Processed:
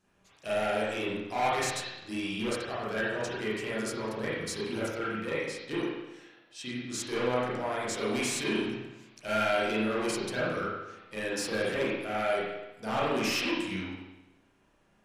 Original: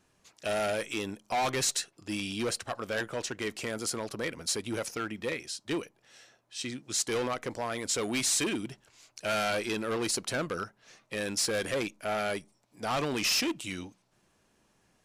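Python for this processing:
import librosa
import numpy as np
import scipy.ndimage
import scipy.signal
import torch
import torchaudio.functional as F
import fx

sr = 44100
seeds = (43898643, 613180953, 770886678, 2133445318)

y = fx.rev_spring(x, sr, rt60_s=1.0, pass_ms=(32, 37), chirp_ms=60, drr_db=-9.0)
y = y * librosa.db_to_amplitude(-7.5)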